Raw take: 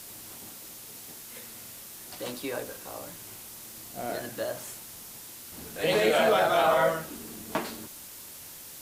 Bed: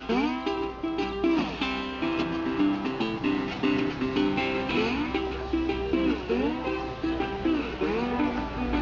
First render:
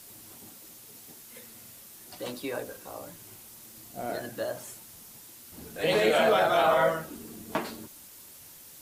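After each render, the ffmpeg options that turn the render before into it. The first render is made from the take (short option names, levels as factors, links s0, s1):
-af "afftdn=nr=6:nf=-45"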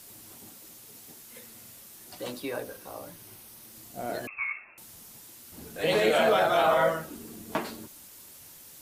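-filter_complex "[0:a]asettb=1/sr,asplit=3[s0][s1][s2];[s0]atrim=end=2.404[s3];[s1]atrim=start=2.4:end=3.72,asetpts=PTS-STARTPTS,afade=t=in:d=0.004:c=qsin,afade=t=out:st=1.316:d=0.004:c=qsin,equalizer=f=7300:w=7.2:g=-9[s4];[s2]atrim=start=3.716[s5];[s3][s4]acrossfade=d=0.004:c1=hsin:c2=qsin[s6];[s6][s5]acrossfade=d=0.004:c1=qsin:c2=hsin,asettb=1/sr,asplit=3[s7][s8][s9];[s7]atrim=end=4.274[s10];[s8]atrim=start=4.27:end=4.78,asetpts=PTS-STARTPTS,afade=t=in:d=0.004:c=qsin,afade=t=out:st=0.506:d=0.004:c=qsin,lowpass=f=2400:t=q:w=0.5098,lowpass=f=2400:t=q:w=0.6013,lowpass=f=2400:t=q:w=0.9,lowpass=f=2400:t=q:w=2.563,afreqshift=-2800[s11];[s9]atrim=start=4.776[s12];[s10][s11]acrossfade=d=0.004:c1=hsin:c2=qsin[s13];[s13][s12]acrossfade=d=0.004:c1=qsin:c2=hsin"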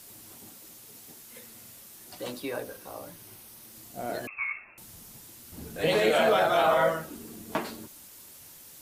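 -filter_complex "[0:a]asettb=1/sr,asplit=3[s0][s1][s2];[s0]atrim=end=4.534[s3];[s1]atrim=start=4.53:end=5.89,asetpts=PTS-STARTPTS,afade=t=in:d=0.004:c=qsin,afade=t=out:st=1.356:d=0.004:c=qsin,lowshelf=f=210:g=7.5[s4];[s2]atrim=start=5.886[s5];[s3][s4]acrossfade=d=0.004:c1=hsin:c2=qsin[s6];[s6][s5]acrossfade=d=0.004:c1=qsin:c2=hsin"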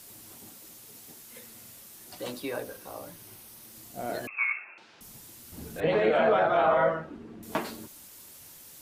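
-filter_complex "[0:a]asettb=1/sr,asplit=3[s0][s1][s2];[s0]atrim=end=4.344[s3];[s1]atrim=start=4.34:end=5.01,asetpts=PTS-STARTPTS,afade=t=in:d=0.004:c=qsin,afade=t=out:st=0.666:d=0.004:c=qsin,highpass=350,equalizer=f=390:t=q:w=4:g=3,equalizer=f=840:t=q:w=4:g=4,equalizer=f=1500:t=q:w=4:g=8,equalizer=f=2500:t=q:w=4:g=6,lowpass=f=4600:w=0.5412,lowpass=f=4600:w=1.3066[s4];[s2]atrim=start=5.006[s5];[s3][s4]acrossfade=d=0.004:c1=hsin:c2=qsin[s6];[s6][s5]acrossfade=d=0.004:c1=qsin:c2=hsin,asettb=1/sr,asplit=3[s7][s8][s9];[s7]atrim=end=5.804[s10];[s8]atrim=start=5.8:end=7.43,asetpts=PTS-STARTPTS,afade=t=in:d=0.004:c=qsin,afade=t=out:st=1.626:d=0.004:c=qsin,lowpass=2000[s11];[s9]atrim=start=7.426[s12];[s10][s11]acrossfade=d=0.004:c1=hsin:c2=qsin[s13];[s13][s12]acrossfade=d=0.004:c1=qsin:c2=hsin"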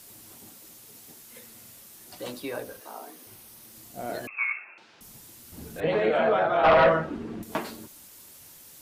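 -filter_complex "[0:a]asettb=1/sr,asplit=3[s0][s1][s2];[s0]atrim=end=2.804[s3];[s1]atrim=start=2.8:end=3.27,asetpts=PTS-STARTPTS,afade=t=in:d=0.004:c=qsin,afade=t=out:st=0.466:d=0.004:c=qsin,afreqshift=140[s4];[s2]atrim=start=3.266[s5];[s3][s4]acrossfade=d=0.004:c1=hsin:c2=qsin[s6];[s6][s5]acrossfade=d=0.004:c1=qsin:c2=hsin,asplit=3[s7][s8][s9];[s7]afade=t=out:st=6.63:d=0.02[s10];[s8]aeval=exprs='0.211*sin(PI/2*1.78*val(0)/0.211)':c=same,afade=t=in:st=6.63:d=0.02,afade=t=out:st=7.42:d=0.02[s11];[s9]afade=t=in:st=7.42:d=0.02[s12];[s10][s11][s12]amix=inputs=3:normalize=0"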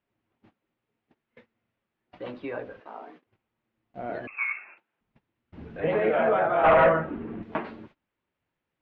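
-af "lowpass=f=2600:w=0.5412,lowpass=f=2600:w=1.3066,agate=range=0.0631:threshold=0.00316:ratio=16:detection=peak"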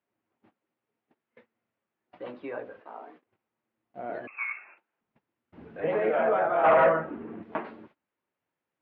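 -af "highpass=f=320:p=1,highshelf=f=3200:g=-12"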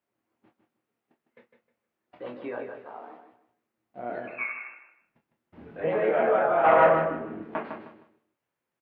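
-filter_complex "[0:a]asplit=2[s0][s1];[s1]adelay=25,volume=0.473[s2];[s0][s2]amix=inputs=2:normalize=0,aecho=1:1:155|310|465:0.422|0.105|0.0264"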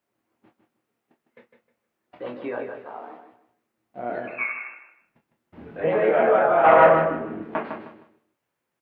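-af "volume=1.68"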